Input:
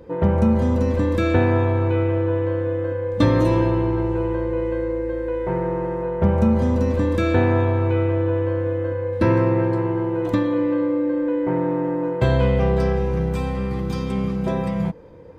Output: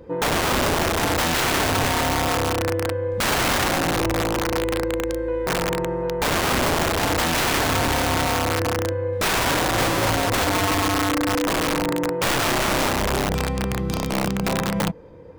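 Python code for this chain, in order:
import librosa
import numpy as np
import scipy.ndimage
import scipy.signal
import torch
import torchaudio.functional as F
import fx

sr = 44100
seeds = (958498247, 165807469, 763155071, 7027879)

y = fx.peak_eq(x, sr, hz=110.0, db=11.0, octaves=0.75, at=(9.77, 10.88))
y = (np.mod(10.0 ** (16.0 / 20.0) * y + 1.0, 2.0) - 1.0) / 10.0 ** (16.0 / 20.0)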